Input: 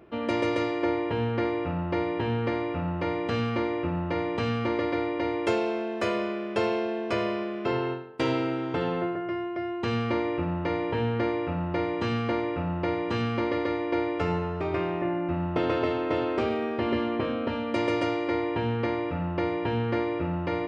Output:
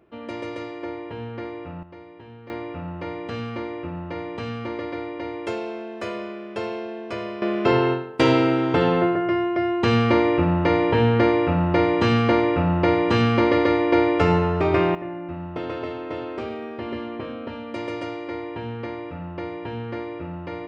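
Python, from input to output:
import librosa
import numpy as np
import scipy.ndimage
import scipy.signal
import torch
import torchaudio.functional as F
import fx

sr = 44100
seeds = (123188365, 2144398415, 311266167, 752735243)

y = fx.gain(x, sr, db=fx.steps((0.0, -6.0), (1.83, -16.0), (2.5, -3.0), (7.42, 9.0), (14.95, -4.0)))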